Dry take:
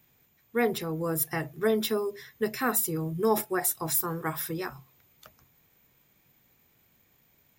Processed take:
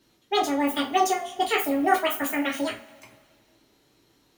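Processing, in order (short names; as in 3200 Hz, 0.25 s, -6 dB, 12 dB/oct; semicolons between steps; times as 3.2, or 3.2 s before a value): reverb, pre-delay 3 ms, DRR -4 dB; speed mistake 45 rpm record played at 78 rpm; high shelf 11000 Hz -8 dB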